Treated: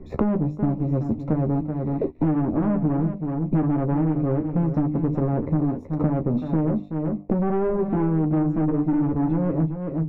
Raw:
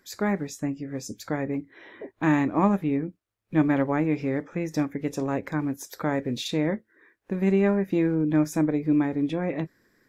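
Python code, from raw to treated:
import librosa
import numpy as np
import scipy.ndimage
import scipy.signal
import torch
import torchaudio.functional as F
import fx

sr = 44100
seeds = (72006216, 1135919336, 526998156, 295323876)

y = fx.tilt_eq(x, sr, slope=-4.5)
y = fx.hum_notches(y, sr, base_hz=50, count=7)
y = fx.leveller(y, sr, passes=2)
y = scipy.signal.lfilter(np.full(28, 1.0 / 28), 1.0, y)
y = 10.0 ** (-11.5 / 20.0) * np.tanh(y / 10.0 ** (-11.5 / 20.0))
y = fx.doubler(y, sr, ms=13.0, db=-5.5)
y = y + 10.0 ** (-11.5 / 20.0) * np.pad(y, (int(378 * sr / 1000.0), 0))[:len(y)]
y = fx.band_squash(y, sr, depth_pct=100)
y = y * librosa.db_to_amplitude(-7.5)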